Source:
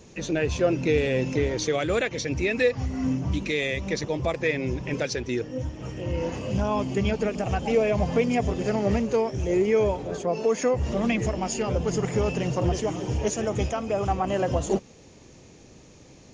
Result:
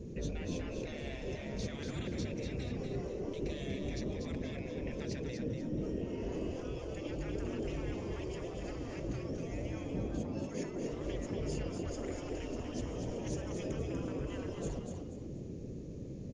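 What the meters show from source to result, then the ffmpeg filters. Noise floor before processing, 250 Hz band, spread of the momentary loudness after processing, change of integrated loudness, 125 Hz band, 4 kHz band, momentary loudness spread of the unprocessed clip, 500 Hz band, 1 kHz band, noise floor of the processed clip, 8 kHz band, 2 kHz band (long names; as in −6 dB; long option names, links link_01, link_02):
−50 dBFS, −11.0 dB, 4 LU, −14.0 dB, −11.0 dB, −13.5 dB, 6 LU, −15.5 dB, −19.5 dB, −44 dBFS, −15.0 dB, −18.0 dB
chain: -filter_complex "[0:a]afftfilt=real='re*lt(hypot(re,im),0.0891)':imag='im*lt(hypot(re,im),0.0891)':win_size=1024:overlap=0.75,firequalizer=gain_entry='entry(160,0);entry(450,-3);entry(800,-21)':delay=0.05:min_phase=1,asplit=5[link_01][link_02][link_03][link_04][link_05];[link_02]adelay=241,afreqshift=38,volume=-5.5dB[link_06];[link_03]adelay=482,afreqshift=76,volume=-15.4dB[link_07];[link_04]adelay=723,afreqshift=114,volume=-25.3dB[link_08];[link_05]adelay=964,afreqshift=152,volume=-35.2dB[link_09];[link_01][link_06][link_07][link_08][link_09]amix=inputs=5:normalize=0,volume=7dB"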